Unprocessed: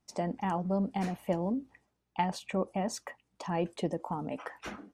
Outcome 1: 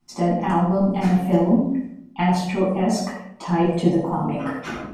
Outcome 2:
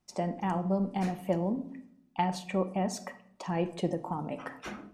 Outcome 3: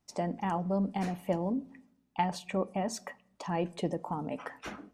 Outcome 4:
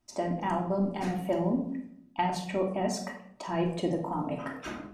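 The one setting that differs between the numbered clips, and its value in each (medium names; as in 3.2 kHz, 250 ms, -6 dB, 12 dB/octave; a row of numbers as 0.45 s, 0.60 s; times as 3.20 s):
simulated room, microphone at: 11 m, 0.99 m, 0.32 m, 2.8 m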